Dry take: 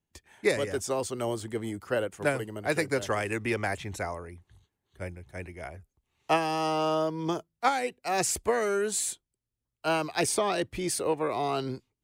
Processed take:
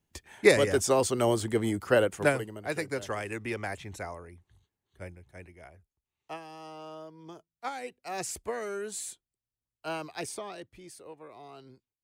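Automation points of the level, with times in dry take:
0:02.14 +5.5 dB
0:02.60 −5 dB
0:05.02 −5 dB
0:06.44 −17 dB
0:07.30 −17 dB
0:07.87 −8 dB
0:10.08 −8 dB
0:10.93 −19 dB

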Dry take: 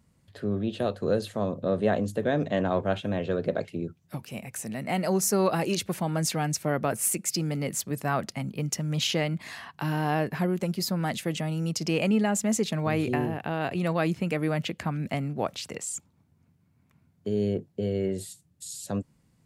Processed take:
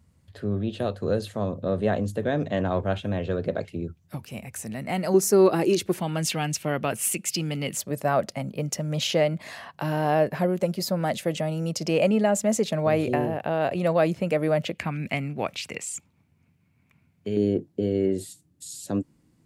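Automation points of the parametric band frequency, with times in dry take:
parametric band +11 dB 0.59 octaves
79 Hz
from 0:05.14 360 Hz
from 0:06.00 2,900 Hz
from 0:07.77 580 Hz
from 0:14.75 2,400 Hz
from 0:17.37 310 Hz

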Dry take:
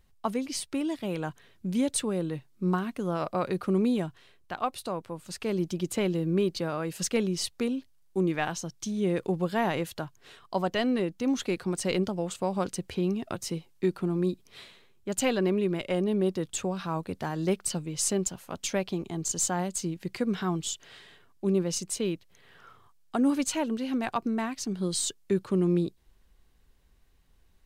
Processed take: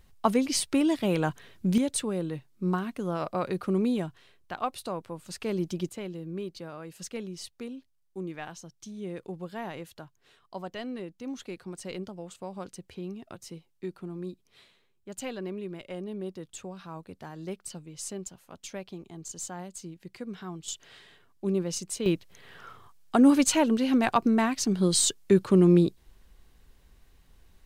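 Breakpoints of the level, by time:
+6 dB
from 0:01.78 −1 dB
from 0:05.89 −10 dB
from 0:20.68 −2 dB
from 0:22.06 +6 dB

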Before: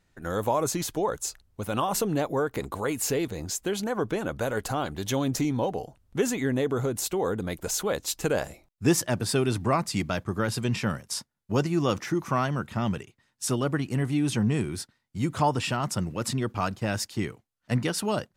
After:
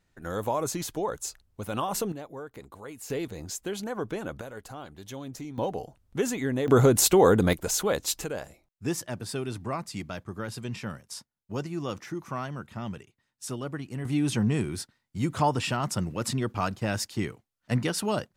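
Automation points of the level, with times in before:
−3 dB
from 0:02.12 −13.5 dB
from 0:03.10 −4.5 dB
from 0:04.41 −12.5 dB
from 0:05.58 −2 dB
from 0:06.68 +9 dB
from 0:07.53 +1.5 dB
from 0:08.24 −8 dB
from 0:14.05 −0.5 dB

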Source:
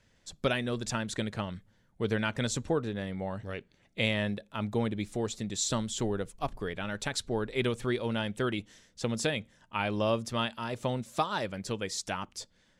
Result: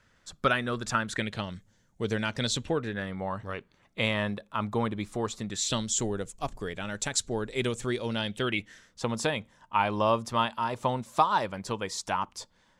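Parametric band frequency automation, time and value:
parametric band +11.5 dB 0.73 octaves
0:01.09 1,300 Hz
0:01.54 6,700 Hz
0:02.23 6,700 Hz
0:03.15 1,100 Hz
0:05.46 1,100 Hz
0:05.95 7,200 Hz
0:07.94 7,200 Hz
0:09.02 980 Hz

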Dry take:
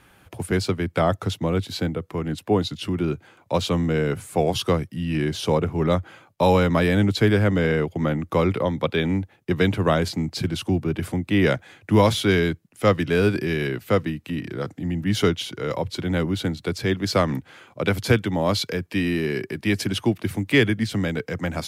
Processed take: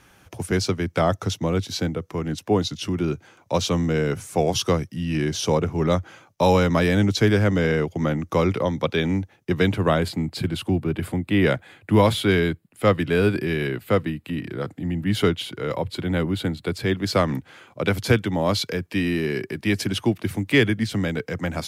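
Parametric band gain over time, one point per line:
parametric band 5,900 Hz 0.38 octaves
0:09.13 +10 dB
0:09.77 0 dB
0:10.07 −9 dB
0:16.57 −9 dB
0:17.38 +0.5 dB

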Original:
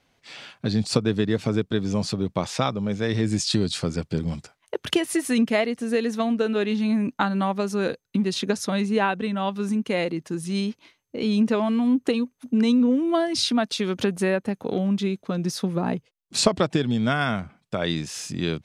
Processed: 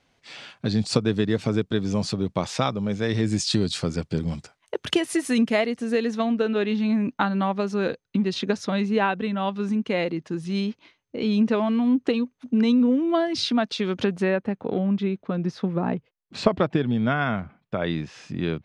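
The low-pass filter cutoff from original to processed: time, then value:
0:05.60 9,400 Hz
0:06.40 4,600 Hz
0:14.13 4,600 Hz
0:14.55 2,500 Hz

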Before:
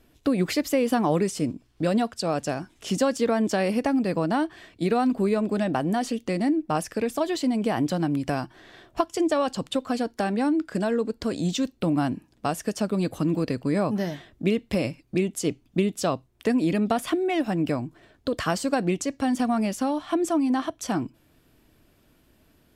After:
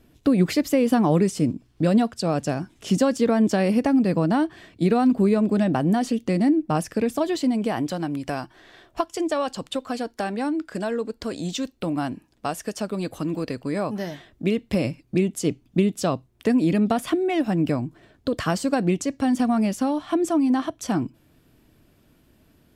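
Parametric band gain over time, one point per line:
parametric band 150 Hz 2.4 octaves
0:07.28 +6.5 dB
0:07.94 −4 dB
0:14.03 −4 dB
0:14.86 +4.5 dB

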